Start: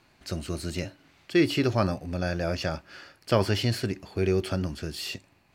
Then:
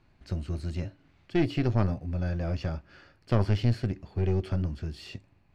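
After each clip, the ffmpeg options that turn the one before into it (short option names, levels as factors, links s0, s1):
-af "aemphasis=mode=reproduction:type=bsi,aeval=exprs='(tanh(3.98*val(0)+0.65)-tanh(0.65))/3.98':c=same,volume=0.668"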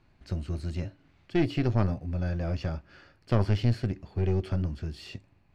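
-af anull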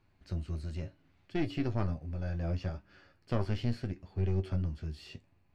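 -af "flanger=delay=9.7:depth=3.9:regen=51:speed=0.7:shape=triangular,volume=0.794"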